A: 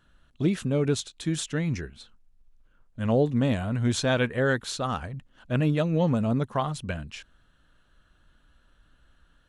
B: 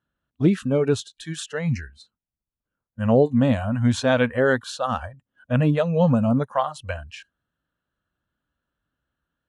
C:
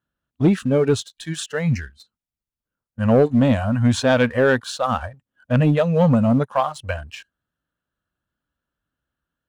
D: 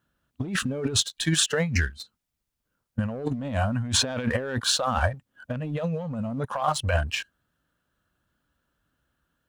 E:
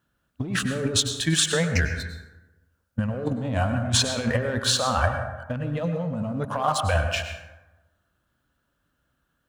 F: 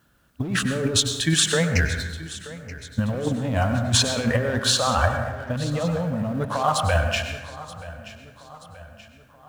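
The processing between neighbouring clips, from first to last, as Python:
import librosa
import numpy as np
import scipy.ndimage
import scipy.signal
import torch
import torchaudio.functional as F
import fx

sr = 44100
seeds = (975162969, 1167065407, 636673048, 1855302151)

y1 = scipy.signal.sosfilt(scipy.signal.butter(2, 83.0, 'highpass', fs=sr, output='sos'), x)
y1 = fx.noise_reduce_blind(y1, sr, reduce_db=20)
y1 = fx.high_shelf(y1, sr, hz=2500.0, db=-9.0)
y1 = y1 * librosa.db_to_amplitude(6.5)
y2 = fx.leveller(y1, sr, passes=1)
y3 = fx.over_compress(y2, sr, threshold_db=-27.0, ratio=-1.0)
y4 = fx.rev_plate(y3, sr, seeds[0], rt60_s=1.1, hf_ratio=0.45, predelay_ms=85, drr_db=6.0)
y4 = y4 * librosa.db_to_amplitude(1.0)
y5 = fx.law_mismatch(y4, sr, coded='mu')
y5 = fx.echo_feedback(y5, sr, ms=929, feedback_pct=51, wet_db=-17)
y5 = y5 * librosa.db_to_amplitude(1.5)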